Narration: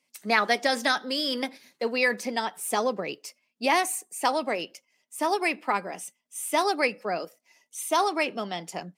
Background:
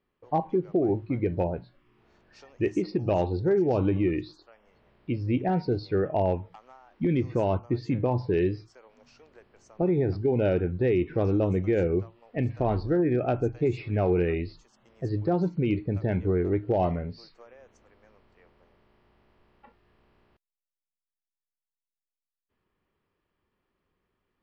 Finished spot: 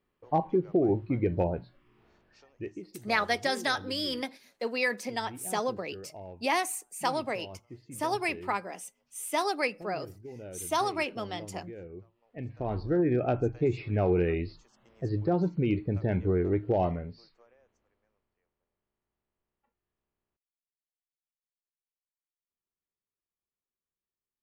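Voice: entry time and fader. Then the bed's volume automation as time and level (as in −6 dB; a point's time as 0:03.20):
2.80 s, −4.5 dB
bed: 0:02.05 −0.5 dB
0:03.03 −19.5 dB
0:11.94 −19.5 dB
0:12.99 −1.5 dB
0:16.77 −1.5 dB
0:18.48 −24 dB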